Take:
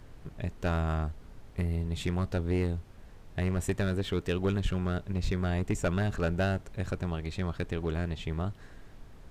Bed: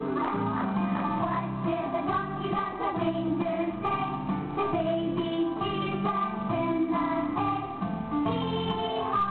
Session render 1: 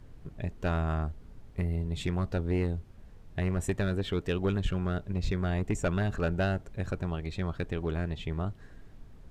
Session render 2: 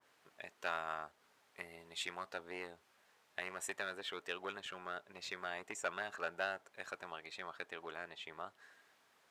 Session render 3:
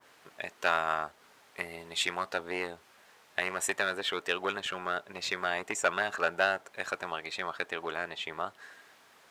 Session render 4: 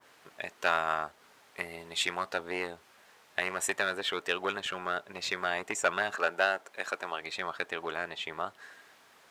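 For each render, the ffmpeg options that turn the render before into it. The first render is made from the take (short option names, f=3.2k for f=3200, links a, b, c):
-af "afftdn=nr=6:nf=-51"
-af "highpass=1k,adynamicequalizer=threshold=0.00224:dfrequency=1600:dqfactor=0.7:tfrequency=1600:tqfactor=0.7:attack=5:release=100:ratio=0.375:range=2.5:mode=cutabove:tftype=highshelf"
-af "volume=11.5dB"
-filter_complex "[0:a]asettb=1/sr,asplit=3[a][b][c];[a]atrim=end=6.164[d];[b]atrim=start=6.16:end=7.21,asetpts=PTS-STARTPTS,afade=t=in:d=0.004:c=qsin,afade=t=out:st=1.046:d=0.004:c=qsin,highpass=230[e];[c]atrim=start=7.206[f];[d][e]acrossfade=d=0.004:c1=hsin:c2=qsin[g];[g][f]acrossfade=d=0.004:c1=qsin:c2=hsin"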